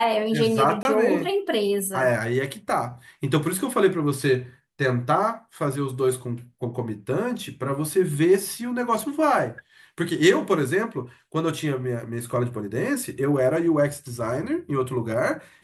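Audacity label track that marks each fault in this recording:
0.830000	0.850000	drop-out 21 ms

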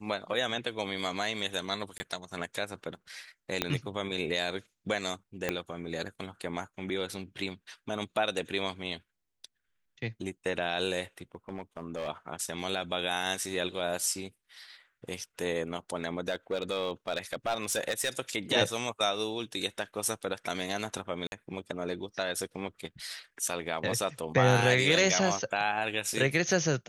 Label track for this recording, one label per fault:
1.980000	2.000000	drop-out 20 ms
3.620000	3.620000	click −11 dBFS
5.490000	5.490000	click −14 dBFS
11.220000	12.090000	clipping −31 dBFS
16.280000	18.100000	clipping −24.5 dBFS
21.270000	21.320000	drop-out 51 ms

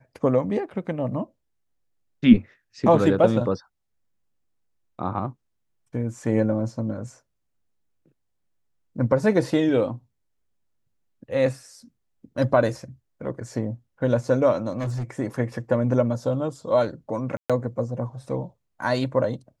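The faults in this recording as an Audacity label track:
14.710000	15.100000	clipping −24 dBFS
17.370000	17.500000	drop-out 126 ms

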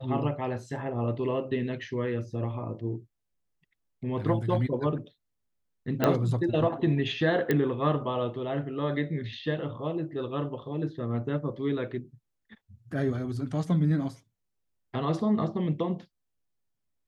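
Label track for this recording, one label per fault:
6.040000	6.040000	click −11 dBFS
7.510000	7.510000	click −13 dBFS

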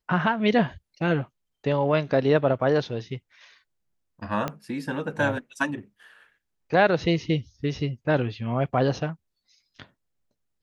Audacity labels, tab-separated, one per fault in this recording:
4.480000	4.480000	click −14 dBFS

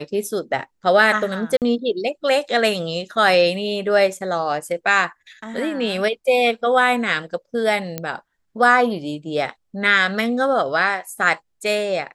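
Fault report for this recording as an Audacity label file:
1.570000	1.620000	drop-out 48 ms
7.980000	7.980000	click −10 dBFS

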